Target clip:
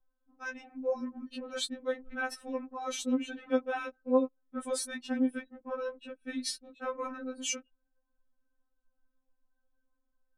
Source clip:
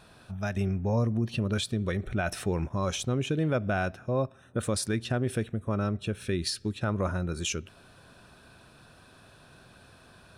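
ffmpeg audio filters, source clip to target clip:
-af "anlmdn=3.98,afftfilt=real='re*3.46*eq(mod(b,12),0)':imag='im*3.46*eq(mod(b,12),0)':win_size=2048:overlap=0.75"

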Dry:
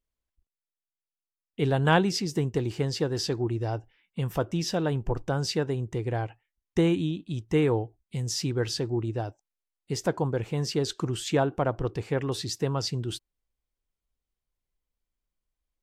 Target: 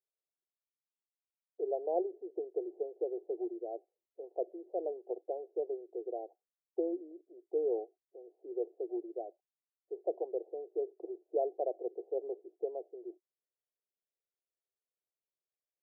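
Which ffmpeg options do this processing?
-af "asuperpass=centerf=510:order=12:qfactor=1.3,volume=-5.5dB"

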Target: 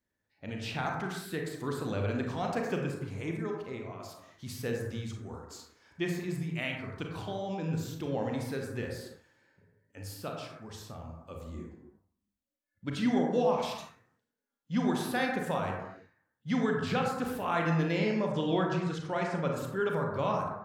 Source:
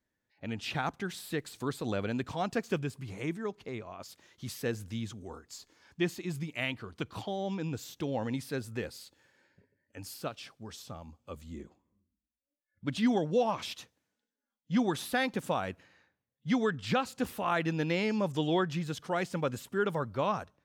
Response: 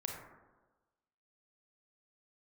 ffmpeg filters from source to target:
-filter_complex "[0:a]asettb=1/sr,asplit=3[a][b][c];[a]atrim=end=17.984[d];[b]atrim=start=17.98:end=19.53,asetpts=PTS-STARTPTS,afade=t=in:d=0.004:c=qsin,afade=t=out:st=1.546:d=0.004:c=qsin,lowpass=7k[e];[c]atrim=start=19.526[f];[d][e]acrossfade=d=0.004:c1=hsin:c2=qsin[g];[g][f]acrossfade=d=0.004:c1=qsin:c2=hsin[h];[1:a]atrim=start_sample=2205,afade=t=out:st=0.41:d=0.01,atrim=end_sample=18522[i];[h][i]afir=irnorm=-1:irlink=0"

